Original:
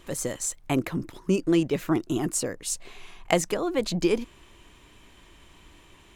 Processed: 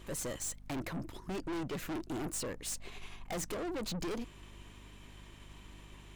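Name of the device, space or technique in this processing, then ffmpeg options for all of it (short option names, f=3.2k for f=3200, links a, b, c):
valve amplifier with mains hum: -af "aeval=exprs='(tanh(50.1*val(0)+0.35)-tanh(0.35))/50.1':c=same,aeval=exprs='val(0)+0.00251*(sin(2*PI*50*n/s)+sin(2*PI*2*50*n/s)/2+sin(2*PI*3*50*n/s)/3+sin(2*PI*4*50*n/s)/4+sin(2*PI*5*50*n/s)/5)':c=same,volume=-1.5dB"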